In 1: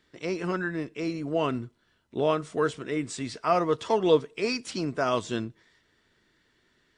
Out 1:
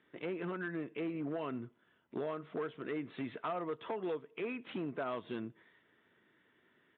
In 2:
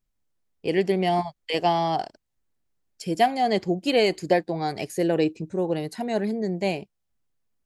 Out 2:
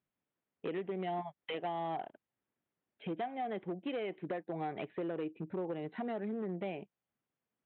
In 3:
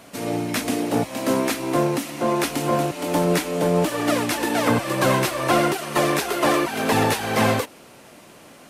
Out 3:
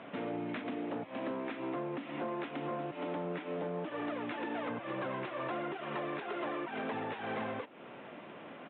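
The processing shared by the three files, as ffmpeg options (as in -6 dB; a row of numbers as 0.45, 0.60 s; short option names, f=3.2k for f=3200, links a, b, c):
-af "acompressor=threshold=-32dB:ratio=12,aresample=8000,volume=31dB,asoftclip=hard,volume=-31dB,aresample=44100,highpass=160,lowpass=2.7k,volume=-1dB"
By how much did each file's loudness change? -12.0, -14.5, -17.0 LU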